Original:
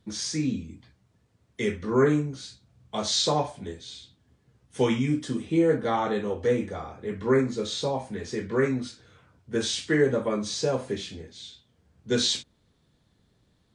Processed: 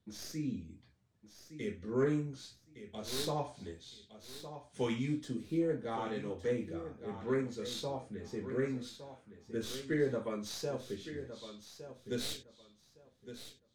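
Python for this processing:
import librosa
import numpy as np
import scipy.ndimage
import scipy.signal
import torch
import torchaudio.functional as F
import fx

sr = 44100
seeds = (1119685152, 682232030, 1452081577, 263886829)

y = fx.tracing_dist(x, sr, depth_ms=0.087)
y = fx.rotary(y, sr, hz=0.75)
y = fx.echo_feedback(y, sr, ms=1162, feedback_pct=21, wet_db=-11.5)
y = y * 10.0 ** (-9.0 / 20.0)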